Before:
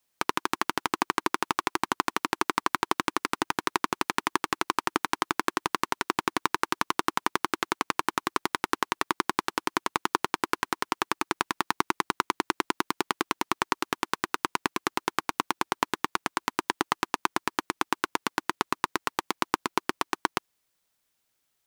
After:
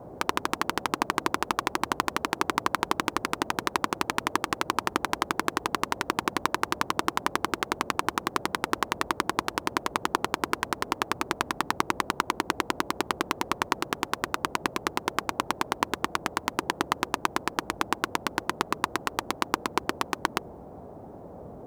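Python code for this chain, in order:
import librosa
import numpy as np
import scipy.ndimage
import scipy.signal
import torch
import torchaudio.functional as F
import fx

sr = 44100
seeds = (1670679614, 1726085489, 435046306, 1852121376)

y = fx.dmg_noise_band(x, sr, seeds[0], low_hz=46.0, high_hz=720.0, level_db=-44.0)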